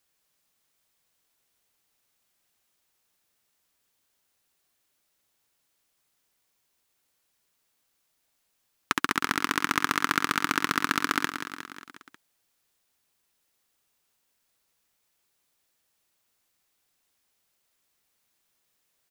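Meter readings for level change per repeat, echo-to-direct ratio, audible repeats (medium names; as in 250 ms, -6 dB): -4.5 dB, -7.0 dB, 5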